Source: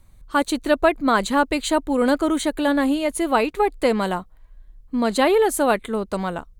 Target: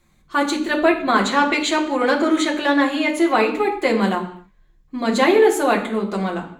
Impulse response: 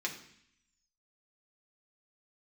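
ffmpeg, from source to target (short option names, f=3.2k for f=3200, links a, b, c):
-filter_complex "[0:a]asettb=1/sr,asplit=3[a][b][c];[a]atrim=end=1.214[d];[b]atrim=start=1.21:end=3.34,asetpts=PTS-STARTPTS,afade=t=in:d=0.004:c=qsin,afade=t=out:st=2.126:d=0.004:c=qsin,asplit=2[e][f];[f]highpass=f=720:p=1,volume=10dB,asoftclip=type=tanh:threshold=-7dB[g];[e][g]amix=inputs=2:normalize=0,lowpass=f=3.8k:p=1,volume=-6dB[h];[c]atrim=start=3.336[i];[d][h]acrossfade=d=0.004:c1=hsin:c2=qsin[j];[j][i]acrossfade=d=0.004:c1=qsin:c2=hsin[k];[1:a]atrim=start_sample=2205,afade=t=out:st=0.33:d=0.01,atrim=end_sample=14994[l];[k][l]afir=irnorm=-1:irlink=0"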